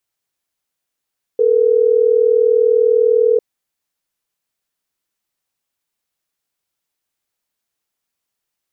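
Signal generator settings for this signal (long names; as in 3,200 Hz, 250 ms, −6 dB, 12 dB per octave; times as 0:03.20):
call progress tone ringback tone, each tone −12.5 dBFS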